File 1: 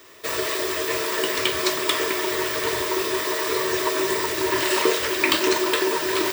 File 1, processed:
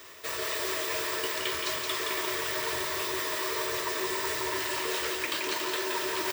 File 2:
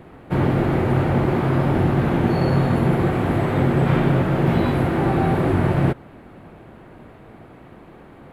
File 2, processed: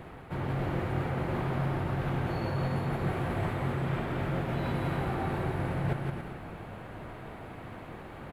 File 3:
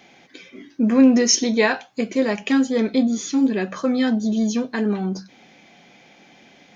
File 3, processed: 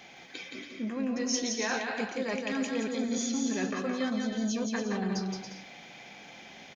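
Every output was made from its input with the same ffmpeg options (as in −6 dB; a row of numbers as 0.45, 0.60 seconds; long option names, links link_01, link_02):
-af "equalizer=frequency=280:width_type=o:width=1.8:gain=-6,areverse,acompressor=threshold=-31dB:ratio=10,areverse,aecho=1:1:170|280.5|352.3|399|429.4:0.631|0.398|0.251|0.158|0.1,volume=1dB"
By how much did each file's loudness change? −7.5, −13.0, −12.0 LU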